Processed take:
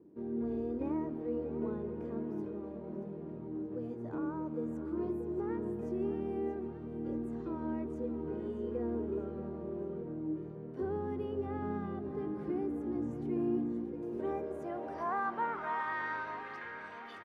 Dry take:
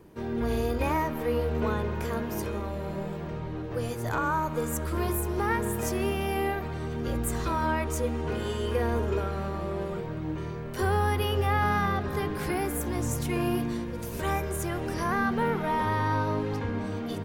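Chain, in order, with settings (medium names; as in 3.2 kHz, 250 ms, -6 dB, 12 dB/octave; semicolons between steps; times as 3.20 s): band-pass sweep 290 Hz -> 1.8 kHz, 13.82–16.04 s; on a send: feedback delay 631 ms, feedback 56%, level -12 dB; on the sum: trim -1 dB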